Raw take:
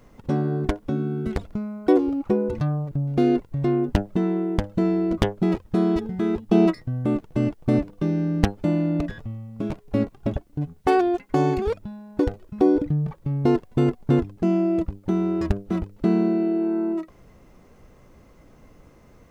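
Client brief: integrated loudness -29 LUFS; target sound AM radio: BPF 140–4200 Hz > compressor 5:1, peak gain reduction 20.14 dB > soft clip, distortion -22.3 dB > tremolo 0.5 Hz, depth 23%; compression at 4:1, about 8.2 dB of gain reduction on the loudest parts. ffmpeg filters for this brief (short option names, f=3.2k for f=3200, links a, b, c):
-af "acompressor=threshold=-24dB:ratio=4,highpass=140,lowpass=4.2k,acompressor=threshold=-44dB:ratio=5,asoftclip=threshold=-32.5dB,tremolo=f=0.5:d=0.23,volume=19.5dB"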